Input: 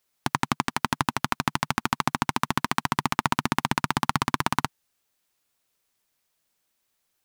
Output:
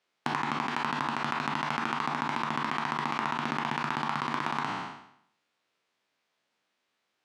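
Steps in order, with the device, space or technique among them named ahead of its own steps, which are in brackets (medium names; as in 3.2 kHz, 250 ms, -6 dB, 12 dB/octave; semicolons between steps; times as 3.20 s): spectral sustain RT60 0.70 s; AM radio (band-pass 190–3500 Hz; compression 10:1, threshold -27 dBFS, peak gain reduction 12 dB; saturation -12 dBFS, distortion -22 dB); trim +1.5 dB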